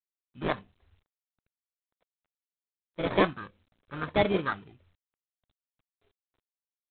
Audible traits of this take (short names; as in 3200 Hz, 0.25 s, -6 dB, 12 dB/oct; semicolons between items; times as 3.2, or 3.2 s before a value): phasing stages 6, 1.7 Hz, lowest notch 510–1700 Hz; aliases and images of a low sample rate 2800 Hz, jitter 0%; G.726